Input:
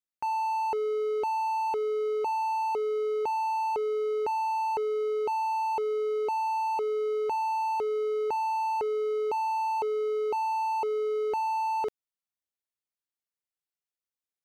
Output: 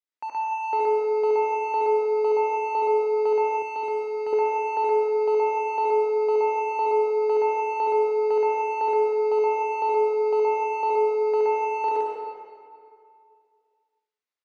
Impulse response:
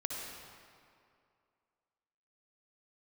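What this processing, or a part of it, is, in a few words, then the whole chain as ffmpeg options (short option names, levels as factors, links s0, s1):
station announcement: -filter_complex "[0:a]highpass=320,lowpass=4700,equalizer=f=2100:t=o:w=0.21:g=4,aecho=1:1:72.89|122.4:0.794|0.891[s0];[1:a]atrim=start_sample=2205[s1];[s0][s1]afir=irnorm=-1:irlink=0,asettb=1/sr,asplit=3[s2][s3][s4];[s2]atrim=end=3.624[s5];[s3]atrim=start=3.62:end=4.33,asetpts=PTS-STARTPTS,afade=t=in:d=0.004:c=qsin,afade=t=out:st=0.706:d=0.004:c=qsin,equalizer=f=125:t=o:w=1:g=9,equalizer=f=500:t=o:w=1:g=-7,equalizer=f=1000:t=o:w=1:g=-4[s6];[s4]atrim=start=4.326[s7];[s5][s6]acrossfade=d=0.004:c1=hsin:c2=qsin[s8];[s8][s7]acrossfade=d=0.004:c1=qsin:c2=hsin"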